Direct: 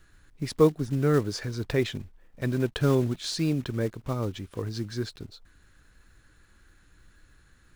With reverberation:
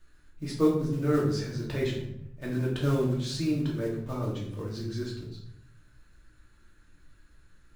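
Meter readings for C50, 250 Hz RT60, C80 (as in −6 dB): 5.0 dB, 1.0 s, 8.0 dB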